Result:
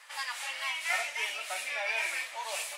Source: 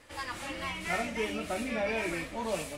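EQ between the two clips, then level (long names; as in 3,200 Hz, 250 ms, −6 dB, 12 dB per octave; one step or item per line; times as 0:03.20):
high-pass filter 860 Hz 24 dB per octave
dynamic equaliser 1,200 Hz, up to −7 dB, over −52 dBFS, Q 1.8
+5.5 dB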